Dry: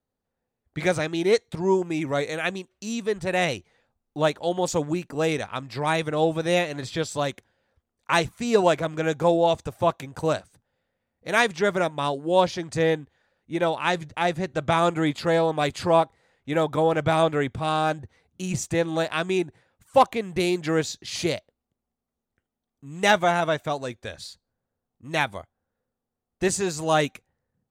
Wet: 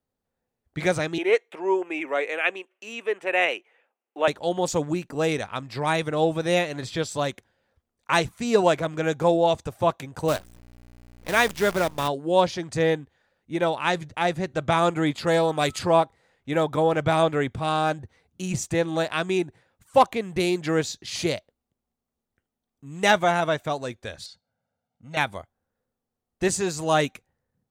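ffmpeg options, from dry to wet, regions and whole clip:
-filter_complex "[0:a]asettb=1/sr,asplit=3[a][b][c];[a]atrim=end=1.184[d];[b]atrim=start=1.18:end=4.28,asetpts=PTS-STARTPTS,afade=t=in:d=0.004:c=qsin,afade=t=out:st=3.096:d=0.004:c=qsin,highpass=f=350:w=0.5412,highpass=f=350:w=1.3066,highshelf=f=3.4k:t=q:w=3:g=-8[e];[c]atrim=start=4.276[f];[d][e]acrossfade=d=0.004:c1=hsin:c2=qsin[g];[g][f]acrossfade=d=0.004:c1=qsin:c2=hsin,asettb=1/sr,asplit=3[h][i][j];[h]atrim=end=10.284[k];[i]atrim=start=10.28:end=12.08,asetpts=PTS-STARTPTS,afade=t=in:d=0.004:c=qsin,afade=t=out:st=1.796:d=0.004:c=qsin,highpass=65,aeval=exprs='val(0)+0.00562*(sin(2*PI*60*n/s)+sin(2*PI*2*60*n/s)/2+sin(2*PI*3*60*n/s)/3+sin(2*PI*4*60*n/s)/4+sin(2*PI*5*60*n/s)/5)':c=same,acrusher=bits=6:dc=4:mix=0:aa=0.000001[l];[j]atrim=start=12.076[m];[k][l]acrossfade=d=0.004:c1=hsin:c2=qsin[n];[n][m]acrossfade=d=0.004:c1=qsin:c2=hsin,asettb=1/sr,asplit=3[o][p][q];[o]atrim=end=15.274[r];[p]atrim=start=15.27:end=15.79,asetpts=PTS-STARTPTS,afade=t=in:d=0.004:c=qsin,afade=t=out:st=0.516:d=0.004:c=qsin,highshelf=f=5.1k:g=9,aeval=exprs='val(0)+0.00355*sin(2*PI*1300*n/s)':c=same[s];[q]atrim=start=15.786[t];[r][s]acrossfade=d=0.004:c1=hsin:c2=qsin[u];[u][t]acrossfade=d=0.004:c1=qsin:c2=hsin,asettb=1/sr,asplit=3[v][w][x];[v]atrim=end=24.264[y];[w]atrim=start=24.26:end=25.17,asetpts=PTS-STARTPTS,afade=t=in:d=0.004:c=qsin,afade=t=out:st=0.906:d=0.004:c=qsin,aecho=1:1:1.4:0.98,atrim=end_sample=40131,acompressor=threshold=-45dB:ratio=1.5:attack=3.2:release=140:knee=1:detection=peak,highpass=130,lowpass=5.3k[z];[x]atrim=start=25.166[aa];[y][z]acrossfade=d=0.004:c1=hsin:c2=qsin[ab];[ab][aa]acrossfade=d=0.004:c1=qsin:c2=hsin"

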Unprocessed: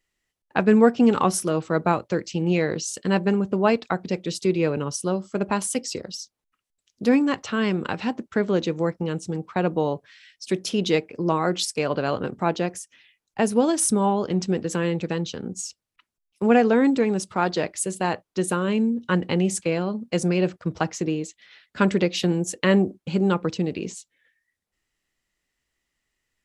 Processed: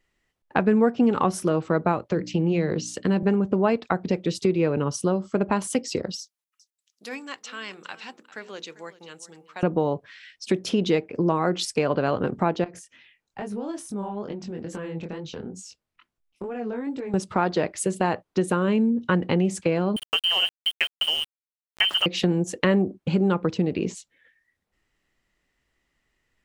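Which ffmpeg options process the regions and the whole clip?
-filter_complex "[0:a]asettb=1/sr,asplit=3[a][b][c];[a]atrim=end=2.114[d];[b]atrim=start=2.11:end=3.23,asetpts=PTS-STARTPTS,afade=t=in:d=0.004:c=qsin,afade=t=out:st=1.116:d=0.004:c=qsin,bandreject=f=60:t=h:w=6,bandreject=f=120:t=h:w=6,bandreject=f=180:t=h:w=6,bandreject=f=240:t=h:w=6,bandreject=f=300:t=h:w=6,acrossover=split=380|3000[e][f][g];[f]acompressor=threshold=-33dB:ratio=2.5:attack=3.2:release=140:knee=2.83:detection=peak[h];[e][h][g]amix=inputs=3:normalize=0,highshelf=f=7.4k:g=-7.5[i];[c]atrim=start=3.226[j];[d][i]acrossfade=d=0.004:c1=hsin:c2=qsin[k];[k][j]acrossfade=d=0.004:c1=qsin:c2=hsin,asettb=1/sr,asplit=3[l][m][n];[l]atrim=end=6.204[o];[m]atrim=start=6.2:end=9.63,asetpts=PTS-STARTPTS,afade=t=in:d=0.004:c=qsin,afade=t=out:st=3.426:d=0.004:c=qsin,aderivative,bandreject=f=60:t=h:w=6,bandreject=f=120:t=h:w=6,bandreject=f=180:t=h:w=6,bandreject=f=240:t=h:w=6,bandreject=f=300:t=h:w=6,bandreject=f=360:t=h:w=6,bandreject=f=420:t=h:w=6,bandreject=f=480:t=h:w=6,aecho=1:1:395:0.133,atrim=end_sample=151263[p];[n]atrim=start=9.626[q];[o][p]acrossfade=d=0.004:c1=hsin:c2=qsin[r];[r][q]acrossfade=d=0.004:c1=qsin:c2=hsin,asettb=1/sr,asplit=3[s][t][u];[s]atrim=end=12.644[v];[t]atrim=start=12.64:end=17.14,asetpts=PTS-STARTPTS,afade=t=in:d=0.004:c=qsin,afade=t=out:st=4.496:d=0.004:c=qsin,acompressor=threshold=-34dB:ratio=6:attack=3.2:release=140:knee=1:detection=peak,flanger=delay=19.5:depth=5.2:speed=2.3[w];[u]atrim=start=17.136[x];[v][w]acrossfade=d=0.004:c1=hsin:c2=qsin[y];[y][x]acrossfade=d=0.004:c1=qsin:c2=hsin,asettb=1/sr,asplit=3[z][aa][ab];[z]atrim=end=19.964[ac];[aa]atrim=start=19.96:end=22.06,asetpts=PTS-STARTPTS,afade=t=in:d=0.004:c=qsin,afade=t=out:st=2.096:d=0.004:c=qsin,lowpass=f=2.8k:t=q:w=0.5098,lowpass=f=2.8k:t=q:w=0.6013,lowpass=f=2.8k:t=q:w=0.9,lowpass=f=2.8k:t=q:w=2.563,afreqshift=-3300,aeval=exprs='val(0)*gte(abs(val(0)),0.0335)':c=same[ad];[ab]atrim=start=22.056[ae];[ac][ad]acrossfade=d=0.004:c1=hsin:c2=qsin[af];[af][ae]acrossfade=d=0.004:c1=qsin:c2=hsin,highshelf=f=3.8k:g=-11.5,acompressor=threshold=-29dB:ratio=2.5,volume=7.5dB"

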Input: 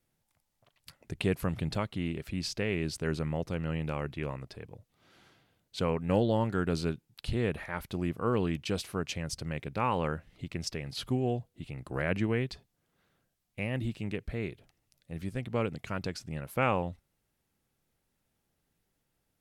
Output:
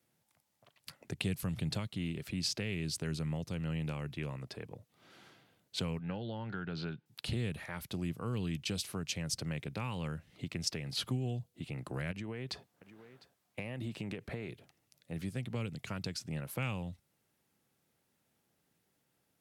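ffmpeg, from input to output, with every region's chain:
-filter_complex "[0:a]asettb=1/sr,asplit=3[a][b][c];[a]atrim=end=5.994[d];[b]atrim=start=5.99:end=7.06,asetpts=PTS-STARTPTS,afade=t=in:d=0.004:c=qsin,afade=t=out:st=1.066:d=0.004:c=qsin,acompressor=threshold=-29dB:ratio=3:attack=3.2:release=140:knee=1:detection=peak,highpass=120,equalizer=f=260:t=q:w=4:g=-4,equalizer=f=820:t=q:w=4:g=6,equalizer=f=1.5k:t=q:w=4:g=9,lowpass=f=3.9k:w=0.5412,lowpass=f=3.9k:w=1.3066[e];[c]atrim=start=7.056[f];[d][e]acrossfade=d=0.004:c1=hsin:c2=qsin[g];[g][f]acrossfade=d=0.004:c1=qsin:c2=hsin,asettb=1/sr,asplit=3[h][i][j];[h]atrim=end=12.114[k];[i]atrim=start=12.11:end=14.49,asetpts=PTS-STARTPTS,afade=t=in:d=0.004:c=qsin,afade=t=out:st=2.376:d=0.004:c=qsin,equalizer=f=820:t=o:w=2.6:g=7,acompressor=threshold=-33dB:ratio=10:attack=3.2:release=140:knee=1:detection=peak,aecho=1:1:703:0.0891,atrim=end_sample=104958[l];[j]atrim=start=14.486[m];[k][l]acrossfade=d=0.004:c1=hsin:c2=qsin[n];[n][m]acrossfade=d=0.004:c1=qsin:c2=hsin,highpass=120,acrossover=split=170|3000[o][p][q];[p]acompressor=threshold=-43dB:ratio=10[r];[o][r][q]amix=inputs=3:normalize=0,volume=2.5dB"

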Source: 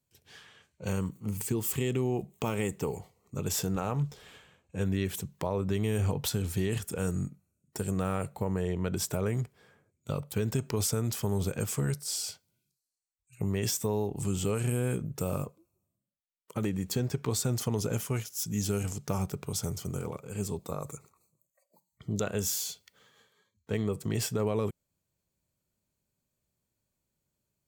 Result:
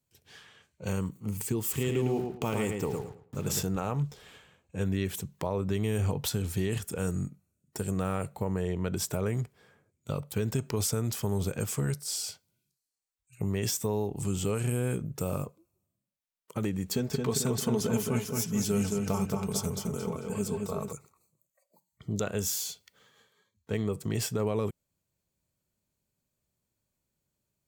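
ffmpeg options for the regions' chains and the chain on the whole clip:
-filter_complex "[0:a]asettb=1/sr,asplit=3[a][b][c];[a]atrim=end=1.634[d];[b]atrim=start=1.63:end=3.63,asetpts=PTS-STARTPTS,afade=t=in:d=0.004:c=qsin,afade=t=out:st=1.996:d=0.004:c=qsin,aeval=exprs='val(0)*gte(abs(val(0)),0.00562)':c=same,asplit=2[e][f];[f]adelay=109,lowpass=f=3.3k:p=1,volume=-4dB,asplit=2[g][h];[h]adelay=109,lowpass=f=3.3k:p=1,volume=0.26,asplit=2[i][j];[j]adelay=109,lowpass=f=3.3k:p=1,volume=0.26,asplit=2[k][l];[l]adelay=109,lowpass=f=3.3k:p=1,volume=0.26[m];[e][g][i][k][m]amix=inputs=5:normalize=0,atrim=end_sample=88200[n];[c]atrim=start=3.626[o];[d][n]acrossfade=d=0.004:c1=hsin:c2=qsin[p];[p][o]acrossfade=d=0.004:c1=qsin:c2=hsin,asettb=1/sr,asplit=3[q][r][s];[q]atrim=end=16.904[t];[r]atrim=start=16.9:end=20.93,asetpts=PTS-STARTPTS,afade=t=in:d=0.004:c=qsin,afade=t=out:st=4.026:d=0.004:c=qsin,aecho=1:1:4.6:0.5,atrim=end_sample=177723,asplit=2[u][v];[v]adelay=221,lowpass=f=3.5k:p=1,volume=-3.5dB,asplit=2[w][x];[x]adelay=221,lowpass=f=3.5k:p=1,volume=0.53,asplit=2[y][z];[z]adelay=221,lowpass=f=3.5k:p=1,volume=0.53,asplit=2[aa][ab];[ab]adelay=221,lowpass=f=3.5k:p=1,volume=0.53,asplit=2[ac][ad];[ad]adelay=221,lowpass=f=3.5k:p=1,volume=0.53,asplit=2[ae][af];[af]adelay=221,lowpass=f=3.5k:p=1,volume=0.53,asplit=2[ag][ah];[ah]adelay=221,lowpass=f=3.5k:p=1,volume=0.53[ai];[u][w][y][aa][ac][ae][ag][ai]amix=inputs=8:normalize=0,atrim=end_sample=177723[aj];[s]atrim=start=20.926[ak];[t][aj]acrossfade=d=0.004:c1=hsin:c2=qsin[al];[al][ak]acrossfade=d=0.004:c1=qsin:c2=hsin"

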